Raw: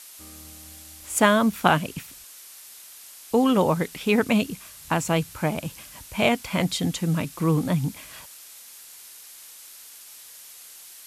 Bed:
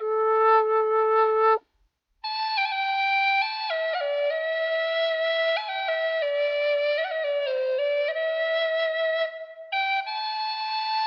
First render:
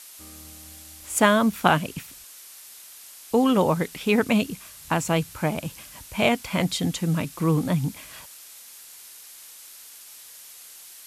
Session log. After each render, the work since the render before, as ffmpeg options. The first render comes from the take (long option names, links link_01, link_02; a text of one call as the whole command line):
ffmpeg -i in.wav -af anull out.wav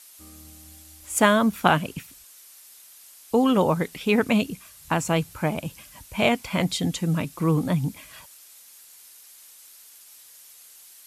ffmpeg -i in.wav -af "afftdn=noise_reduction=6:noise_floor=-46" out.wav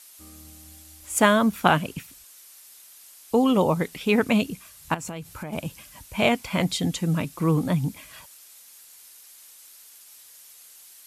ffmpeg -i in.wav -filter_complex "[0:a]asettb=1/sr,asplit=3[link_01][link_02][link_03];[link_01]atrim=end=3.394[link_04];[link_02]atrim=start=3.39:end=3.79,asetpts=PTS-STARTPTS,afade=type=in:duration=0.004:curve=qsin,afade=type=out:start_time=0.396:duration=0.004:curve=qsin,equalizer=frequency=1600:width=4.2:gain=-13[link_05];[link_03]atrim=start=3.786[link_06];[link_04][link_05]acrossfade=duration=0.004:curve1=hsin:curve2=qsin[link_07];[link_07][link_06]acrossfade=duration=0.004:curve1=qsin:curve2=hsin,asettb=1/sr,asplit=3[link_08][link_09][link_10];[link_08]atrim=end=4.944[link_11];[link_09]atrim=start=4.94:end=5.53,asetpts=PTS-STARTPTS,afade=type=in:duration=0.004:curve=qsin,afade=type=out:start_time=0.586:duration=0.004:curve=qsin,acompressor=threshold=-30dB:ratio=16:attack=3.2:release=140:knee=1:detection=peak[link_12];[link_10]atrim=start=5.526[link_13];[link_11][link_12]acrossfade=duration=0.004:curve1=hsin:curve2=qsin[link_14];[link_14][link_13]acrossfade=duration=0.004:curve1=qsin:curve2=hsin" out.wav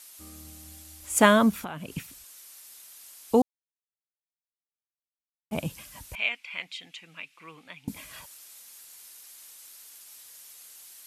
ffmpeg -i in.wav -filter_complex "[0:a]asettb=1/sr,asplit=3[link_01][link_02][link_03];[link_01]atrim=end=1.564[link_04];[link_02]atrim=start=1.56:end=1.96,asetpts=PTS-STARTPTS,afade=type=in:duration=0.004:curve=qsin,afade=type=out:start_time=0.396:duration=0.004:curve=qsin,acompressor=threshold=-34dB:ratio=6:attack=3.2:release=140:knee=1:detection=peak[link_05];[link_03]atrim=start=1.956[link_06];[link_04][link_05]acrossfade=duration=0.004:curve1=hsin:curve2=qsin[link_07];[link_07][link_06]acrossfade=duration=0.004:curve1=qsin:curve2=hsin,asettb=1/sr,asplit=3[link_08][link_09][link_10];[link_08]atrim=end=6.154[link_11];[link_09]atrim=start=6.15:end=7.88,asetpts=PTS-STARTPTS,afade=type=in:duration=0.004:curve=qsin,afade=type=out:start_time=1.726:duration=0.004:curve=qsin,bandpass=frequency=2500:width_type=q:width=3.5[link_12];[link_10]atrim=start=7.876[link_13];[link_11][link_12]acrossfade=duration=0.004:curve1=hsin:curve2=qsin[link_14];[link_14][link_13]acrossfade=duration=0.004:curve1=qsin:curve2=hsin,asplit=3[link_15][link_16][link_17];[link_15]atrim=end=3.42,asetpts=PTS-STARTPTS,afade=type=out:start_time=3.416:duration=0.004:curve=hsin[link_18];[link_16]atrim=start=3.42:end=5.51,asetpts=PTS-STARTPTS,volume=0[link_19];[link_17]atrim=start=5.51,asetpts=PTS-STARTPTS,afade=type=in:duration=0.004:curve=hsin[link_20];[link_18][link_19][link_20]concat=n=3:v=0:a=1" out.wav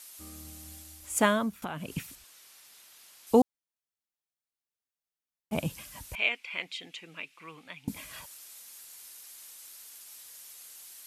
ffmpeg -i in.wav -filter_complex "[0:a]asettb=1/sr,asplit=3[link_01][link_02][link_03];[link_01]atrim=end=2.154[link_04];[link_02]atrim=start=2.15:end=3.27,asetpts=PTS-STARTPTS,afade=type=in:duration=0.004:curve=qsin,afade=type=out:start_time=1.116:duration=0.004:curve=qsin,acrossover=split=5100[link_05][link_06];[link_06]acompressor=threshold=-55dB:ratio=4:attack=1:release=60[link_07];[link_05][link_07]amix=inputs=2:normalize=0[link_08];[link_03]atrim=start=3.266[link_09];[link_04][link_08]acrossfade=duration=0.004:curve1=hsin:curve2=qsin[link_10];[link_10][link_09]acrossfade=duration=0.004:curve1=qsin:curve2=hsin,asettb=1/sr,asplit=3[link_11][link_12][link_13];[link_11]atrim=end=6.184[link_14];[link_12]atrim=start=6.18:end=7.34,asetpts=PTS-STARTPTS,afade=type=in:duration=0.004:curve=qsin,afade=type=out:start_time=1.156:duration=0.004:curve=qsin,equalizer=frequency=390:width=1.5:gain=9.5[link_15];[link_13]atrim=start=7.336[link_16];[link_14][link_15]acrossfade=duration=0.004:curve1=hsin:curve2=qsin[link_17];[link_17][link_16]acrossfade=duration=0.004:curve1=qsin:curve2=hsin,asplit=2[link_18][link_19];[link_18]atrim=end=1.62,asetpts=PTS-STARTPTS,afade=type=out:start_time=0.74:duration=0.88:silence=0.149624[link_20];[link_19]atrim=start=1.62,asetpts=PTS-STARTPTS,afade=type=in:duration=0.004:curve=hsin:silence=0.149624[link_21];[link_20][link_21]concat=n=2:v=0:a=1" out.wav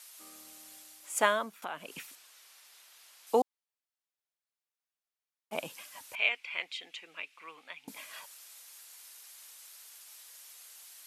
ffmpeg -i in.wav -af "highpass=520,highshelf=frequency=6100:gain=-5" out.wav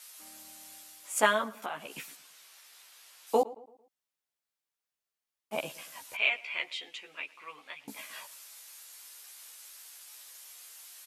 ffmpeg -i in.wav -filter_complex "[0:a]asplit=2[link_01][link_02];[link_02]adelay=14,volume=-2.5dB[link_03];[link_01][link_03]amix=inputs=2:normalize=0,asplit=2[link_04][link_05];[link_05]adelay=112,lowpass=frequency=1800:poles=1,volume=-18.5dB,asplit=2[link_06][link_07];[link_07]adelay=112,lowpass=frequency=1800:poles=1,volume=0.44,asplit=2[link_08][link_09];[link_09]adelay=112,lowpass=frequency=1800:poles=1,volume=0.44,asplit=2[link_10][link_11];[link_11]adelay=112,lowpass=frequency=1800:poles=1,volume=0.44[link_12];[link_04][link_06][link_08][link_10][link_12]amix=inputs=5:normalize=0" out.wav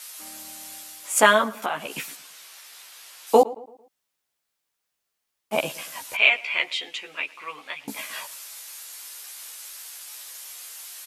ffmpeg -i in.wav -af "volume=10dB,alimiter=limit=-1dB:level=0:latency=1" out.wav